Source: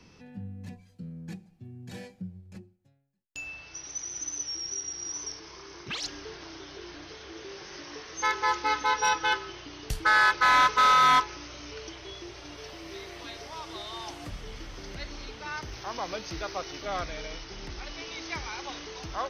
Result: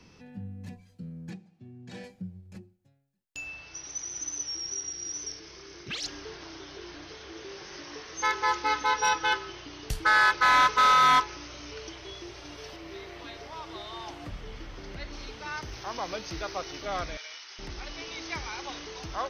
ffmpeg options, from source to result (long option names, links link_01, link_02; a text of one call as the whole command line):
ffmpeg -i in.wav -filter_complex "[0:a]asettb=1/sr,asplit=3[link_01][link_02][link_03];[link_01]atrim=end=1.304[link_04];[link_02]atrim=start=1.3:end=2.04,asetpts=PTS-STARTPTS,afade=type=in:duration=0.004:curve=qsin,afade=type=out:start_time=0.736:duration=0.004:curve=qsin,highpass=140,lowpass=6100[link_05];[link_03]atrim=start=2.036[link_06];[link_04][link_05]acrossfade=duration=0.004:curve1=hsin:curve2=qsin[link_07];[link_07][link_06]acrossfade=duration=0.004:curve1=qsin:curve2=hsin,asettb=1/sr,asplit=3[link_08][link_09][link_10];[link_08]atrim=end=4.904[link_11];[link_09]atrim=start=4.9:end=6.06,asetpts=PTS-STARTPTS,afade=type=in:duration=0.004:curve=qsin,afade=type=out:start_time=1.156:duration=0.004:curve=qsin,equalizer=frequency=980:width=2:gain=-8.5[link_12];[link_10]atrim=start=6.056[link_13];[link_11][link_12]acrossfade=duration=0.004:curve1=hsin:curve2=qsin[link_14];[link_14][link_13]acrossfade=duration=0.004:curve1=qsin:curve2=hsin,asettb=1/sr,asplit=3[link_15][link_16][link_17];[link_15]atrim=end=12.764[link_18];[link_16]atrim=start=12.76:end=15.13,asetpts=PTS-STARTPTS,afade=type=in:duration=0.004:curve=qsin,afade=type=out:start_time=2.366:duration=0.004:curve=qsin,equalizer=frequency=9900:width_type=o:width=1.6:gain=-10.5[link_19];[link_17]atrim=start=15.126[link_20];[link_18][link_19]acrossfade=duration=0.004:curve1=hsin:curve2=qsin[link_21];[link_21][link_20]acrossfade=duration=0.004:curve1=qsin:curve2=hsin,asettb=1/sr,asplit=3[link_22][link_23][link_24];[link_22]atrim=end=17.174[link_25];[link_23]atrim=start=17.17:end=17.59,asetpts=PTS-STARTPTS,afade=type=in:duration=0.004:curve=qsin,afade=type=out:start_time=0.416:duration=0.004:curve=qsin,highpass=1300[link_26];[link_24]atrim=start=17.586[link_27];[link_25][link_26]acrossfade=duration=0.004:curve1=hsin:curve2=qsin[link_28];[link_28][link_27]acrossfade=duration=0.004:curve1=qsin:curve2=hsin" out.wav